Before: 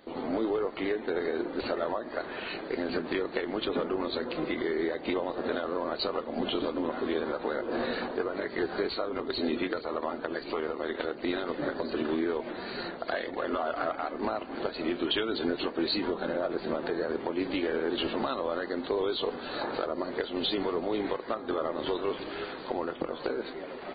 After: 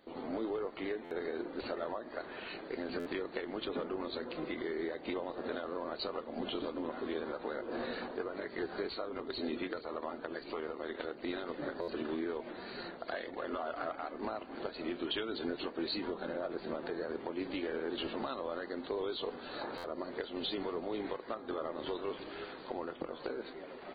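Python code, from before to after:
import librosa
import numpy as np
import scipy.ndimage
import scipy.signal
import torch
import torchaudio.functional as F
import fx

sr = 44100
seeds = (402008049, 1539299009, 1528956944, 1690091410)

y = fx.buffer_glitch(x, sr, at_s=(1.04, 2.99, 11.81, 19.77), block=512, repeats=5)
y = y * 10.0 ** (-7.5 / 20.0)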